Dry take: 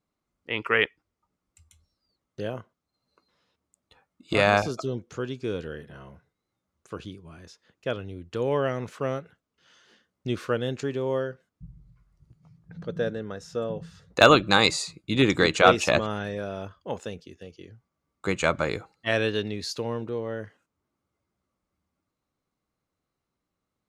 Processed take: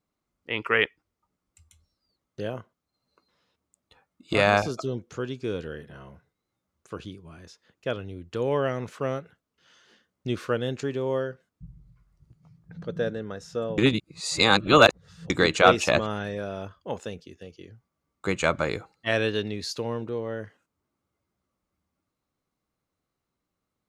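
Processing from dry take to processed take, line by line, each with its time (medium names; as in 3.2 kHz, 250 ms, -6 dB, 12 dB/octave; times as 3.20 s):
13.78–15.30 s: reverse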